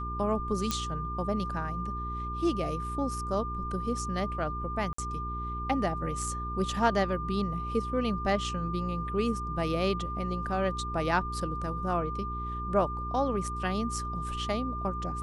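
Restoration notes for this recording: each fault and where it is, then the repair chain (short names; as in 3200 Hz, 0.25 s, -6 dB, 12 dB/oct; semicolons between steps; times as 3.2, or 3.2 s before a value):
hum 60 Hz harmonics 7 -37 dBFS
tone 1200 Hz -35 dBFS
0.71 pop -14 dBFS
4.93–4.98 gap 54 ms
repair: de-click; de-hum 60 Hz, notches 7; notch 1200 Hz, Q 30; interpolate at 4.93, 54 ms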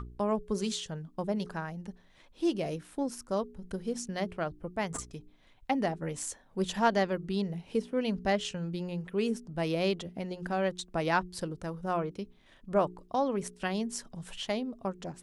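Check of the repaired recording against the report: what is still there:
none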